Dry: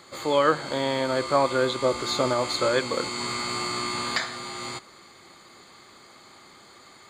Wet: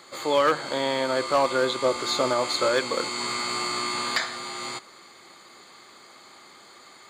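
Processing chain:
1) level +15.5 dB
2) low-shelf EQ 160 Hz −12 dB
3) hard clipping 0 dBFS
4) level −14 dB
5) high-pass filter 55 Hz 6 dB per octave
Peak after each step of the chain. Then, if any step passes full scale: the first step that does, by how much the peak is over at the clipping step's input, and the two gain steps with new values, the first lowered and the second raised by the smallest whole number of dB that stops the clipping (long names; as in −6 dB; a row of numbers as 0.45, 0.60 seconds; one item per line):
+8.5, +7.5, 0.0, −14.0, −13.0 dBFS
step 1, 7.5 dB
step 1 +7.5 dB, step 4 −6 dB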